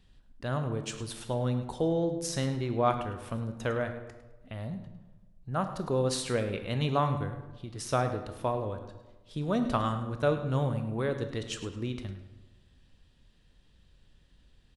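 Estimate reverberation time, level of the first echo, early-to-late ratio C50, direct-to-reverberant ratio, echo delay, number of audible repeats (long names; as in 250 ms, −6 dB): 1.2 s, −13.5 dB, 8.5 dB, 7.0 dB, 105 ms, 1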